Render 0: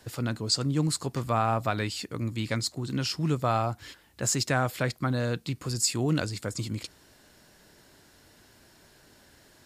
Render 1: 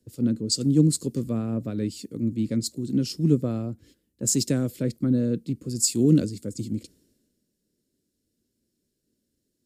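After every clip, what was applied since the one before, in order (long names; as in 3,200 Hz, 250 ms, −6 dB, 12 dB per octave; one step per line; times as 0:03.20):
drawn EQ curve 120 Hz 0 dB, 230 Hz +10 dB, 520 Hz +1 dB, 790 Hz −21 dB, 8,400 Hz −1 dB
multiband upward and downward expander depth 70%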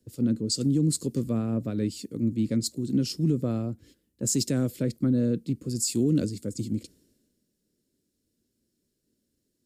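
brickwall limiter −16 dBFS, peak gain reduction 8.5 dB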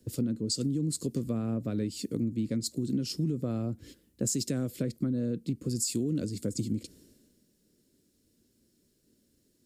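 downward compressor 6 to 1, threshold −35 dBFS, peak gain reduction 14.5 dB
level +7 dB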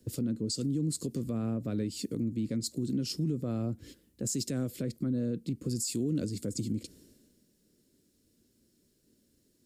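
brickwall limiter −23.5 dBFS, peak gain reduction 6 dB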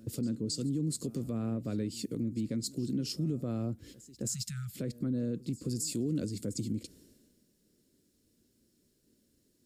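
backwards echo 268 ms −20.5 dB
time-frequency box erased 0:04.28–0:04.76, 210–1,200 Hz
level −1.5 dB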